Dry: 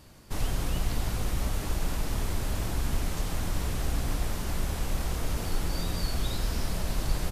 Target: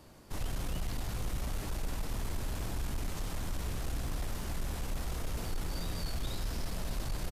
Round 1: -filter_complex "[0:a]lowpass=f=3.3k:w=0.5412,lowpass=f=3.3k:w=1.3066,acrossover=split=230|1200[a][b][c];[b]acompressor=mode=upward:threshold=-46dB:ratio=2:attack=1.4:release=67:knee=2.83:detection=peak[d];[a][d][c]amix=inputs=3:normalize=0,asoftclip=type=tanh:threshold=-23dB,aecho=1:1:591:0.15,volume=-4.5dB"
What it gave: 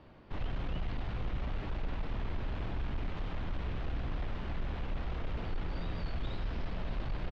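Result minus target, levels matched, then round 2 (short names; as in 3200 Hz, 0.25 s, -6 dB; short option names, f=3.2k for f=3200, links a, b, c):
4000 Hz band -5.0 dB
-filter_complex "[0:a]acrossover=split=230|1200[a][b][c];[b]acompressor=mode=upward:threshold=-46dB:ratio=2:attack=1.4:release=67:knee=2.83:detection=peak[d];[a][d][c]amix=inputs=3:normalize=0,asoftclip=type=tanh:threshold=-23dB,aecho=1:1:591:0.15,volume=-4.5dB"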